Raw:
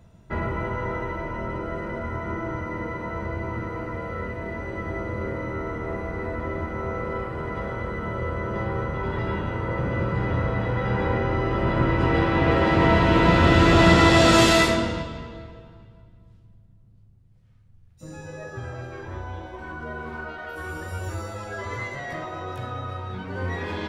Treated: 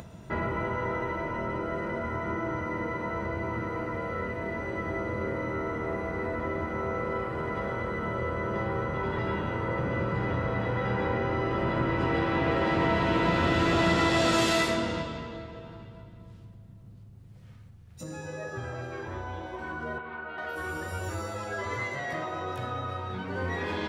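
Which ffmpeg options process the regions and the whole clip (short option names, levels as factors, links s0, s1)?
-filter_complex "[0:a]asettb=1/sr,asplit=3[s0][s1][s2];[s0]atrim=end=19.984[s3];[s1]atrim=start=19.98:end=20.38,asetpts=PTS-STARTPTS,afade=t=in:d=0.004:c=qsin,afade=t=out:st=0.396:d=0.004:c=qsin,lowpass=f=3400:w=0.5412,lowpass=f=3400:w=1.3066,acrossover=split=260|830[s4][s5][s6];[s4]acompressor=threshold=0.00251:ratio=4[s7];[s5]acompressor=threshold=0.00447:ratio=4[s8];[s6]acompressor=threshold=0.01:ratio=4[s9];[s7][s8][s9]amix=inputs=3:normalize=0[s10];[s2]atrim=start=20.376[s11];[s3][s10]acrossfade=d=0.004:c1=hsin:c2=qsin[s12];[s12][s11]acrossfade=d=0.004:c1=qsin:c2=hsin,acompressor=mode=upward:threshold=0.0224:ratio=2.5,highpass=f=120:p=1,acompressor=threshold=0.0447:ratio=2"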